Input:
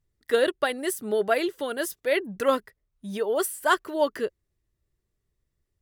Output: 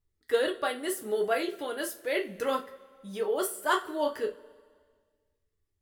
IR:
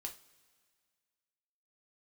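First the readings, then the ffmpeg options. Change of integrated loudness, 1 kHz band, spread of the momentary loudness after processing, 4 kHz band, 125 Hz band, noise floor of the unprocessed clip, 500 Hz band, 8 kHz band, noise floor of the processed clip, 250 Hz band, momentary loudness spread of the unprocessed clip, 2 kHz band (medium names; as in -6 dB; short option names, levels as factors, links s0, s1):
-4.5 dB, -3.5 dB, 7 LU, -3.5 dB, no reading, -80 dBFS, -4.5 dB, -3.5 dB, -79 dBFS, -5.0 dB, 7 LU, -4.5 dB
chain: -filter_complex "[1:a]atrim=start_sample=2205,asetrate=48510,aresample=44100[s0];[0:a][s0]afir=irnorm=-1:irlink=0"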